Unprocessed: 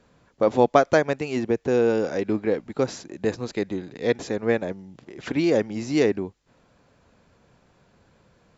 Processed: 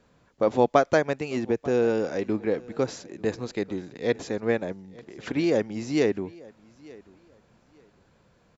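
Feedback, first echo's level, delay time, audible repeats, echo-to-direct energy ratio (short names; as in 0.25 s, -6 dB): no steady repeat, -23.0 dB, 0.891 s, 1, -23.0 dB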